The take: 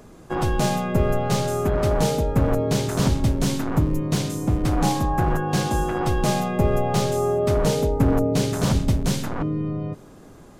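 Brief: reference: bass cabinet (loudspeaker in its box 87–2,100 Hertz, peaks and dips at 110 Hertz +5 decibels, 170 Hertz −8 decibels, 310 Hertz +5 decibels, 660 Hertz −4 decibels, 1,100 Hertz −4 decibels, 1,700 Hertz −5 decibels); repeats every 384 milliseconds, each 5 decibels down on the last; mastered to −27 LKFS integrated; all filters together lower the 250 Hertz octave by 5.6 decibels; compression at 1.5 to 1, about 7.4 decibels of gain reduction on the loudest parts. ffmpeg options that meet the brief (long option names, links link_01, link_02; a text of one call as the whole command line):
ffmpeg -i in.wav -af "equalizer=frequency=250:width_type=o:gain=-9,acompressor=threshold=-37dB:ratio=1.5,highpass=frequency=87:width=0.5412,highpass=frequency=87:width=1.3066,equalizer=frequency=110:width_type=q:width=4:gain=5,equalizer=frequency=170:width_type=q:width=4:gain=-8,equalizer=frequency=310:width_type=q:width=4:gain=5,equalizer=frequency=660:width_type=q:width=4:gain=-4,equalizer=frequency=1100:width_type=q:width=4:gain=-4,equalizer=frequency=1700:width_type=q:width=4:gain=-5,lowpass=frequency=2100:width=0.5412,lowpass=frequency=2100:width=1.3066,aecho=1:1:384|768|1152|1536|1920|2304|2688:0.562|0.315|0.176|0.0988|0.0553|0.031|0.0173,volume=4.5dB" out.wav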